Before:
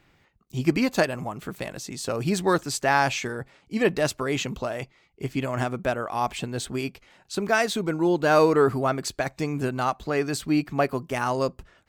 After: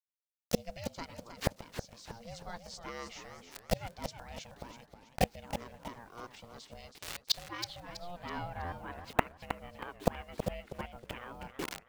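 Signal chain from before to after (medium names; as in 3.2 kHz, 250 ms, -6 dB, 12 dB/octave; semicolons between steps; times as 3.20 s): low-pass sweep 5.5 kHz -> 2.5 kHz, 6.48–8.90 s; ring modulator 350 Hz; bit crusher 8-bit; inverted gate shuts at -27 dBFS, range -35 dB; buffer glitch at 3.42/8.64/9.34 s, samples 512, times 6; modulated delay 320 ms, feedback 36%, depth 177 cents, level -9 dB; trim +15.5 dB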